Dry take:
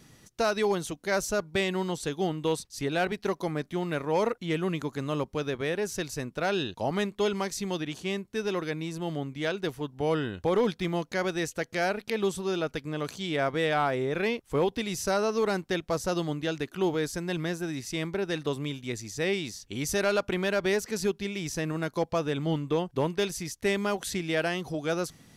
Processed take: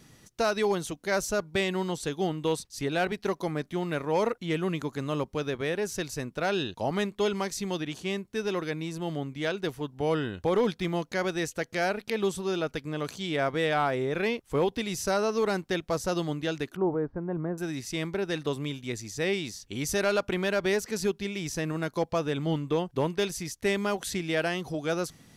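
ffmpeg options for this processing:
-filter_complex "[0:a]asettb=1/sr,asplit=3[a][b][c];[a]atrim=end=16.764[d];[b]atrim=start=16.76:end=17.58,asetpts=PTS-STARTPTS,afade=t=in:d=0.004:c=qsin,afade=t=out:st=0.816:d=0.004:c=qsin,lowpass=f=1.2k:w=0.5412,lowpass=f=1.2k:w=1.3066[e];[c]atrim=start=17.576[f];[d][e]acrossfade=d=0.004:c1=hsin:c2=qsin[g];[g][f]acrossfade=d=0.004:c1=qsin:c2=hsin"

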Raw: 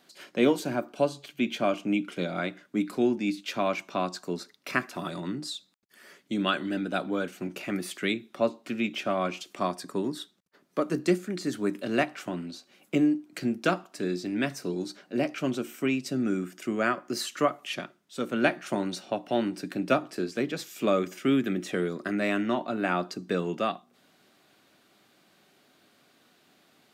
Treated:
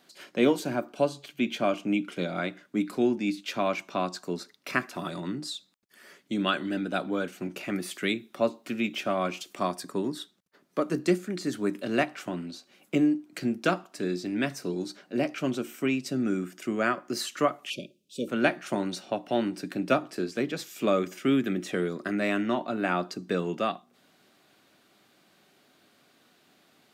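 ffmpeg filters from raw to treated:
-filter_complex "[0:a]asettb=1/sr,asplit=3[a][b][c];[a]atrim=end=7.924[d];[b]atrim=start=7.92:end=9.89,asetpts=PTS-STARTPTS,afade=t=in:d=0.004:c=qsin,afade=t=out:st=1.966:d=0.004:c=qsin,highshelf=f=11k:g=8.5[e];[c]atrim=start=9.886[f];[d][e]acrossfade=d=0.004:c1=hsin:c2=qsin[g];[g][f]acrossfade=d=0.004:c1=qsin:c2=hsin,asettb=1/sr,asplit=3[h][i][j];[h]atrim=end=17.704[k];[i]atrim=start=17.7:end=18.28,asetpts=PTS-STARTPTS,afade=t=in:d=0.004:c=qsin,afade=t=out:st=0.576:d=0.004:c=qsin,asuperstop=centerf=1200:order=20:qfactor=0.66[l];[j]atrim=start=18.276[m];[k][l]acrossfade=d=0.004:c1=hsin:c2=qsin[n];[n][m]acrossfade=d=0.004:c1=qsin:c2=hsin"

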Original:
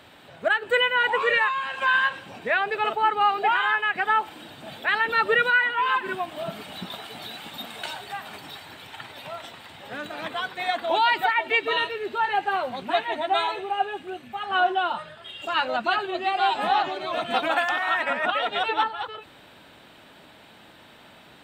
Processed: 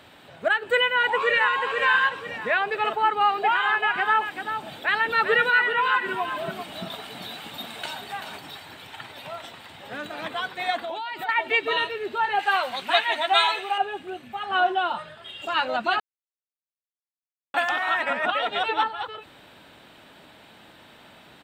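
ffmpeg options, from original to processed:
-filter_complex "[0:a]asplit=2[a][b];[b]afade=t=in:st=0.87:d=0.01,afade=t=out:st=1.6:d=0.01,aecho=0:1:490|980|1470|1960:0.562341|0.196819|0.0688868|0.0241104[c];[a][c]amix=inputs=2:normalize=0,asettb=1/sr,asplit=3[d][e][f];[d]atrim=end=3.274[g];[e]atrim=start=3.27:end=8.39,asetpts=PTS-STARTPTS,afade=t=in:d=0.004:c=qsin,afade=t=out:st=5.116:d=0.004:c=qsin,aecho=1:1:386:0.398,atrim=end_sample=225792[h];[f]atrim=start=8.386[i];[g][h]acrossfade=d=0.004:c1=hsin:c2=qsin[j];[j][i]acrossfade=d=0.004:c1=qsin:c2=hsin,asettb=1/sr,asplit=3[k][l][m];[k]atrim=end=10.824[n];[l]atrim=start=10.82:end=11.29,asetpts=PTS-STARTPTS,afade=t=in:d=0.004:c=qsin,afade=t=out:st=0.466:d=0.004:c=qsin,acompressor=threshold=-28dB:ratio=16:attack=3.2:release=140:knee=1:detection=peak[o];[m]atrim=start=11.286[p];[n][o]acrossfade=d=0.004:c1=hsin:c2=qsin[q];[q][p]acrossfade=d=0.004:c1=qsin:c2=hsin,asettb=1/sr,asplit=3[r][s][t];[r]atrim=end=12.394[u];[s]atrim=start=12.39:end=13.78,asetpts=PTS-STARTPTS,afade=t=in:d=0.004:c=qsin,afade=t=out:st=1.386:d=0.004:c=qsin,tiltshelf=f=690:g=-9.5[v];[t]atrim=start=13.776[w];[u][v]acrossfade=d=0.004:c1=hsin:c2=qsin[x];[x][w]acrossfade=d=0.004:c1=qsin:c2=hsin,asplit=3[y][z][aa];[y]atrim=end=16,asetpts=PTS-STARTPTS,afade=t=out:st=15.996:d=0.004:c=hsin[ab];[z]atrim=start=16:end=17.54,asetpts=PTS-STARTPTS,volume=0[ac];[aa]atrim=start=17.54,asetpts=PTS-STARTPTS,afade=t=in:d=0.004:c=hsin[ad];[ab][ac][ad]concat=n=3:v=0:a=1"

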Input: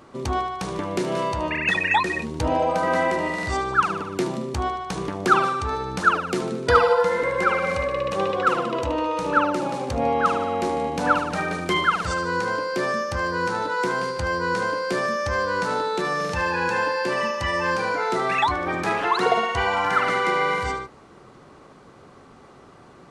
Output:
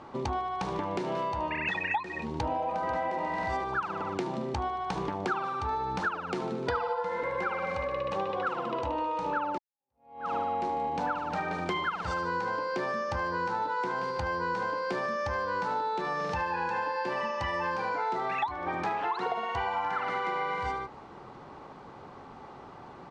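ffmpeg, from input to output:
-filter_complex "[0:a]asplit=2[a][b];[b]afade=t=in:st=2.19:d=0.01,afade=t=out:st=3.15:d=0.01,aecho=0:1:490|980|1470|1960:0.421697|0.126509|0.0379527|0.0113858[c];[a][c]amix=inputs=2:normalize=0,asplit=2[d][e];[d]atrim=end=9.58,asetpts=PTS-STARTPTS,afade=t=out:st=9.576:d=0.004:c=hsin[f];[e]atrim=start=9.58,asetpts=PTS-STARTPTS,afade=t=in:d=0.81:c=exp[g];[f][g]concat=n=2:v=0:a=1,lowpass=4.7k,equalizer=f=860:t=o:w=0.4:g=10,acompressor=threshold=-28dB:ratio=6,volume=-1dB"

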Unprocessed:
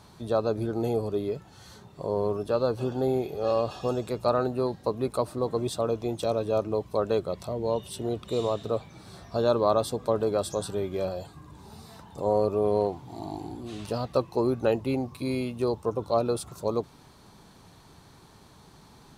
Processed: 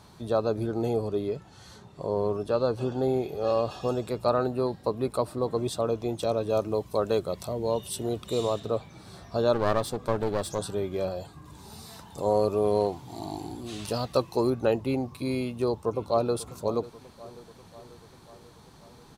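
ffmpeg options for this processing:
-filter_complex "[0:a]asettb=1/sr,asplit=3[a][b][c];[a]atrim=end=0.724[d];[b]atrim=start=0.72:end=3.29,asetpts=PTS-STARTPTS,afade=t=in:d=0.004:c=qsin,afade=t=out:st=2.566:d=0.004:c=qsin,lowpass=11k[e];[c]atrim=start=3.286[f];[d][e]acrossfade=d=0.004:c1=hsin:c2=qsin[g];[g][f]acrossfade=d=0.004:c1=qsin:c2=hsin,asettb=1/sr,asplit=3[h][i][j];[h]atrim=end=3.944[k];[i]atrim=start=3.94:end=5.52,asetpts=PTS-STARTPTS,afade=t=in:d=0.004:c=qsin,afade=t=out:st=1.576:d=0.004:c=qsin,bandreject=f=6.3k:w=12[l];[j]atrim=start=5.516[m];[k][l]acrossfade=d=0.004:c1=hsin:c2=qsin[n];[n][m]acrossfade=d=0.004:c1=qsin:c2=hsin,asettb=1/sr,asplit=3[o][p][q];[o]atrim=end=6.494[r];[p]atrim=start=6.49:end=8.6,asetpts=PTS-STARTPTS,afade=t=in:d=0.004:c=qsin,afade=t=out:st=2.106:d=0.004:c=qsin,highshelf=f=5.8k:g=9[s];[q]atrim=start=8.596[t];[r][s]acrossfade=d=0.004:c1=hsin:c2=qsin[u];[u][t]acrossfade=d=0.004:c1=qsin:c2=hsin,asettb=1/sr,asplit=3[v][w][x];[v]atrim=end=9.534[y];[w]atrim=start=9.53:end=10.59,asetpts=PTS-STARTPTS,afade=t=in:d=0.004:c=qsin,afade=t=out:st=1.056:d=0.004:c=qsin,aeval=exprs='clip(val(0),-1,0.0211)':c=same[z];[x]atrim=start=10.586[aa];[y][z]acrossfade=d=0.004:c1=hsin:c2=qsin[ab];[ab][aa]acrossfade=d=0.004:c1=qsin:c2=hsin,asettb=1/sr,asplit=3[ac][ad][ae];[ac]atrim=end=11.454[af];[ad]atrim=start=11.45:end=14.5,asetpts=PTS-STARTPTS,afade=t=in:d=0.004:c=qsin,afade=t=out:st=3.046:d=0.004:c=qsin,highshelf=f=2.9k:g=8.5[ag];[ae]atrim=start=14.496[ah];[af][ag]acrossfade=d=0.004:c1=hsin:c2=qsin[ai];[ai][ah]acrossfade=d=0.004:c1=qsin:c2=hsin,asplit=2[aj][ak];[ak]afade=t=in:st=15.39:d=0.01,afade=t=out:st=16.35:d=0.01,aecho=0:1:540|1080|1620|2160|2700|3240|3780:0.133352|0.0866789|0.0563413|0.0366218|0.0238042|0.0154727|0.0100573[al];[aj][al]amix=inputs=2:normalize=0"

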